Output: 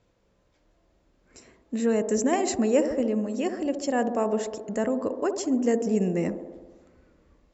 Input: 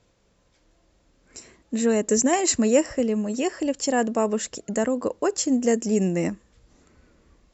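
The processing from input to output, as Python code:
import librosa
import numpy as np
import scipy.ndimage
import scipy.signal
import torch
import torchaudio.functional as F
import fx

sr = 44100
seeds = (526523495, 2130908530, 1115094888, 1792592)

y = fx.high_shelf(x, sr, hz=4500.0, db=-9.5)
y = fx.echo_wet_bandpass(y, sr, ms=67, feedback_pct=71, hz=480.0, wet_db=-7.5)
y = F.gain(torch.from_numpy(y), -3.0).numpy()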